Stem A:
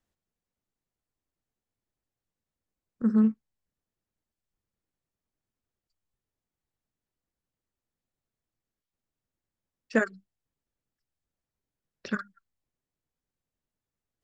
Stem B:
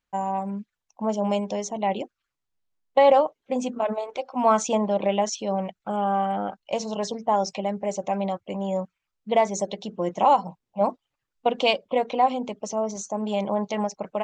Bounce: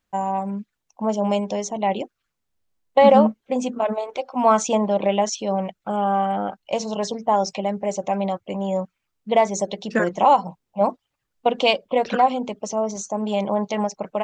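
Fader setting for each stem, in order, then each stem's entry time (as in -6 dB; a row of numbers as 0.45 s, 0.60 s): +2.5 dB, +3.0 dB; 0.00 s, 0.00 s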